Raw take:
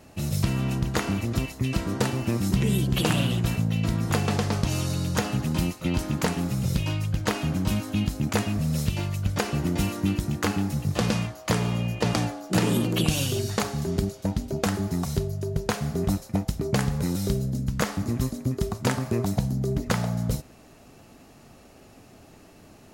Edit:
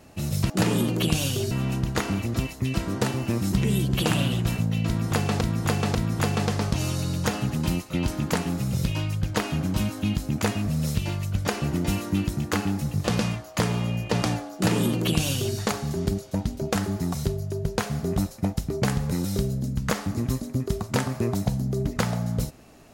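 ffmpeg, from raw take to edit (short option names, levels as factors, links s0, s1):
-filter_complex "[0:a]asplit=5[s0][s1][s2][s3][s4];[s0]atrim=end=0.502[s5];[s1]atrim=start=12.458:end=13.472[s6];[s2]atrim=start=0.498:end=4.402[s7];[s3]atrim=start=3.858:end=4.402[s8];[s4]atrim=start=3.858[s9];[s5][s6]acrossfade=d=0.004:c1=hsin:c2=hsin[s10];[s10][s7]acrossfade=d=0.004:c1=hsin:c2=hsin[s11];[s11][s8]acrossfade=d=0.004:c1=hsin:c2=hsin[s12];[s12][s9]acrossfade=d=0.004:c1=hsin:c2=hsin"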